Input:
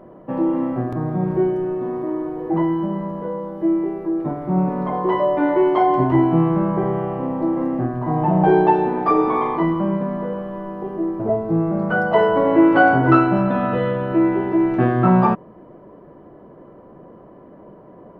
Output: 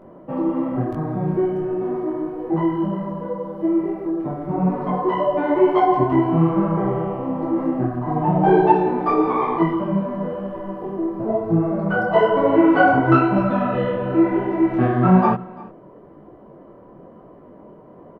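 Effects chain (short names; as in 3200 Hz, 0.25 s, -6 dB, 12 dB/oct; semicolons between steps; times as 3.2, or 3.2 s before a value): notch 1700 Hz, Q 23; on a send: echo 0.341 s -20.5 dB; on the sum: detuned doubles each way 36 cents; gain +3 dB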